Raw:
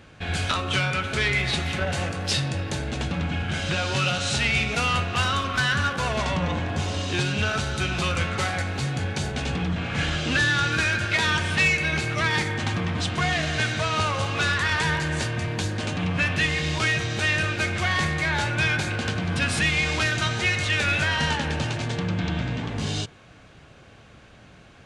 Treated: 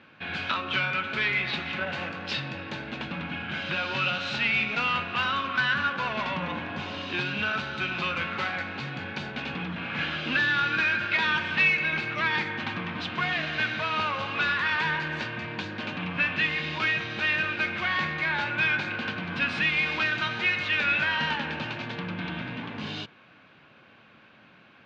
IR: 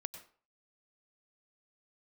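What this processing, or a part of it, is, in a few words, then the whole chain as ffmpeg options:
kitchen radio: -af "highpass=190,equalizer=frequency=220:width_type=q:width=4:gain=3,equalizer=frequency=430:width_type=q:width=4:gain=-4,equalizer=frequency=700:width_type=q:width=4:gain=-3,equalizer=frequency=1000:width_type=q:width=4:gain=4,equalizer=frequency=1500:width_type=q:width=4:gain=4,equalizer=frequency=2500:width_type=q:width=4:gain=5,lowpass=frequency=4200:width=0.5412,lowpass=frequency=4200:width=1.3066,volume=-4.5dB"

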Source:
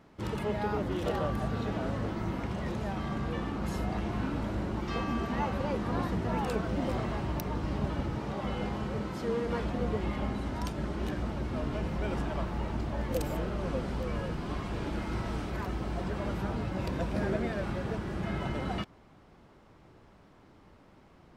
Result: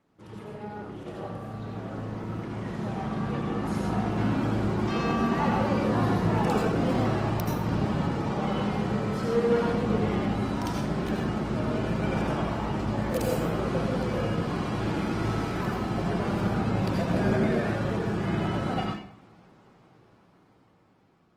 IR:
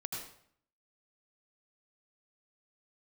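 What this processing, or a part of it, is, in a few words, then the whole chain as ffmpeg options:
far-field microphone of a smart speaker: -filter_complex "[1:a]atrim=start_sample=2205[link_01];[0:a][link_01]afir=irnorm=-1:irlink=0,highpass=110,dynaudnorm=framelen=800:gausssize=7:maxgain=13.5dB,volume=-7.5dB" -ar 48000 -c:a libopus -b:a 20k

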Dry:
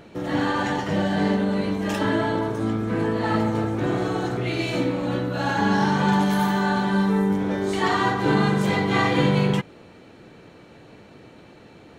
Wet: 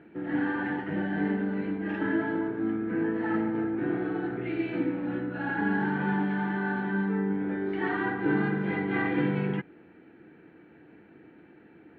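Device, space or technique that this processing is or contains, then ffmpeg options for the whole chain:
bass cabinet: -af "highpass=86,equalizer=frequency=110:width_type=q:width=4:gain=-9,equalizer=frequency=320:width_type=q:width=4:gain=8,equalizer=frequency=580:width_type=q:width=4:gain=-9,equalizer=frequency=1100:width_type=q:width=4:gain=-9,equalizer=frequency=1600:width_type=q:width=4:gain=6,lowpass=frequency=2400:width=0.5412,lowpass=frequency=2400:width=1.3066,volume=-7.5dB"

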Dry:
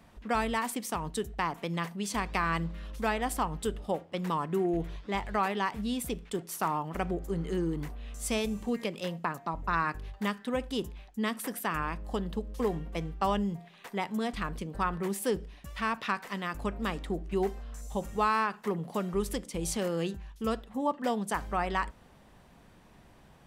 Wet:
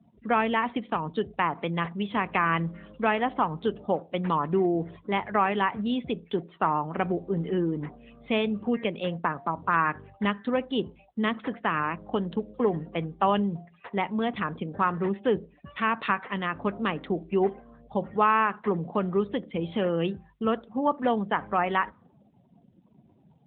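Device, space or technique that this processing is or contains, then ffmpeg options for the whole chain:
mobile call with aggressive noise cancelling: -af "highpass=frequency=110:poles=1,afftdn=noise_reduction=36:noise_floor=-51,volume=6dB" -ar 8000 -c:a libopencore_amrnb -b:a 12200

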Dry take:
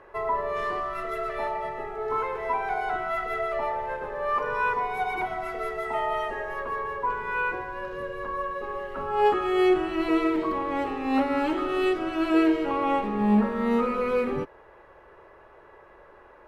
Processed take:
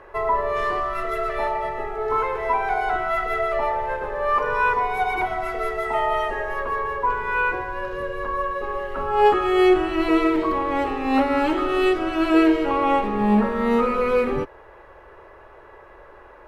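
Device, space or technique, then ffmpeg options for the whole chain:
low shelf boost with a cut just above: -af "lowshelf=frequency=110:gain=5,equalizer=frequency=180:width_type=o:width=1.2:gain=-5,volume=5.5dB"

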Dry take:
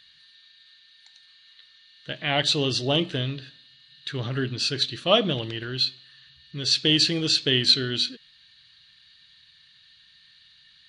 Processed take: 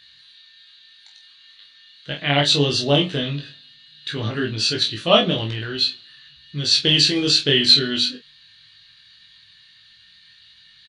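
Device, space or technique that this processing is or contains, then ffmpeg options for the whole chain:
double-tracked vocal: -filter_complex "[0:a]asplit=2[link_01][link_02];[link_02]adelay=28,volume=-6dB[link_03];[link_01][link_03]amix=inputs=2:normalize=0,flanger=delay=18:depth=3.1:speed=0.2,volume=7dB"

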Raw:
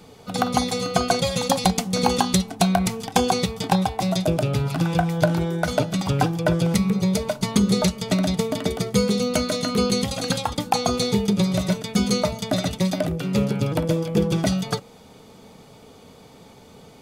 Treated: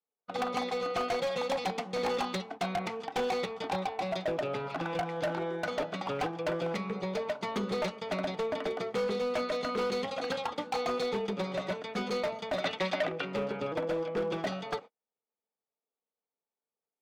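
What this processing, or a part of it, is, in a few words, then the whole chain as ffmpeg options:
walkie-talkie: -filter_complex "[0:a]highpass=430,lowpass=2300,asoftclip=type=hard:threshold=-24.5dB,agate=range=-44dB:threshold=-40dB:ratio=16:detection=peak,asettb=1/sr,asplit=3[link_01][link_02][link_03];[link_01]atrim=end=12.644[link_04];[link_02]atrim=start=12.64:end=13.25,asetpts=PTS-STARTPTS,afade=type=in:duration=0.004:curve=qsin,afade=type=out:start_time=0.606:duration=0.004:curve=qsin,equalizer=frequency=2600:width=0.47:gain=8.5[link_05];[link_03]atrim=start=13.246[link_06];[link_04][link_05]acrossfade=duration=0.004:curve1=hsin:curve2=qsin[link_07];[link_07][link_06]acrossfade=duration=0.004:curve1=qsin:curve2=hsin,volume=-2.5dB"

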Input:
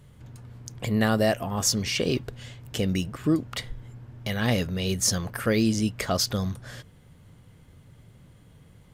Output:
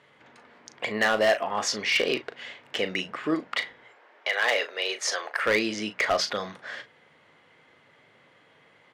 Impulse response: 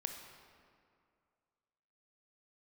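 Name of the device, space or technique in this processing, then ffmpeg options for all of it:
megaphone: -filter_complex "[0:a]highpass=530,lowpass=3400,equalizer=frequency=2000:width_type=o:width=0.51:gain=5.5,asoftclip=type=hard:threshold=-22dB,asplit=2[link_01][link_02];[link_02]adelay=38,volume=-11dB[link_03];[link_01][link_03]amix=inputs=2:normalize=0,asettb=1/sr,asplit=3[link_04][link_05][link_06];[link_04]atrim=end=3.834[link_07];[link_05]atrim=start=3.83:end=5.44,asetpts=PTS-STARTPTS,afade=type=in:duration=0.004:curve=qsin,afade=type=out:start_time=1.606:duration=0.004:curve=qsin,highpass=frequency=400:width=0.5412,highpass=frequency=400:width=1.3066[link_08];[link_06]atrim=start=5.436[link_09];[link_07][link_08]acrossfade=duration=0.004:curve1=hsin:curve2=qsin[link_10];[link_10][link_09]acrossfade=duration=0.004:curve1=qsin:curve2=hsin,bandreject=frequency=60:width_type=h:width=6,bandreject=frequency=120:width_type=h:width=6,bandreject=frequency=180:width_type=h:width=6,volume=5.5dB"

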